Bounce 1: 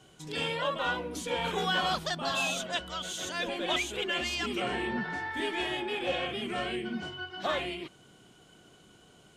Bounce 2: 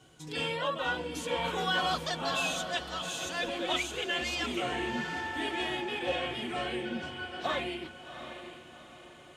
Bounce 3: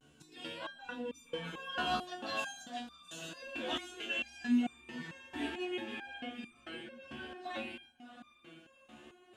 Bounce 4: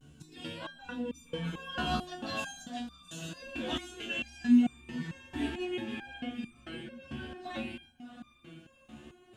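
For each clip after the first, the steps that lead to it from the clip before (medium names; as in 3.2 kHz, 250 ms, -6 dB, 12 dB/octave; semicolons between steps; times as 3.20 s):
comb of notches 200 Hz; on a send: echo that smears into a reverb 747 ms, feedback 44%, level -10.5 dB
vibrato 0.44 Hz 41 cents; small resonant body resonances 250/1600/2700 Hz, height 15 dB, ringing for 90 ms; resonator arpeggio 4.5 Hz 73–1200 Hz; trim +1.5 dB
tone controls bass +14 dB, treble +3 dB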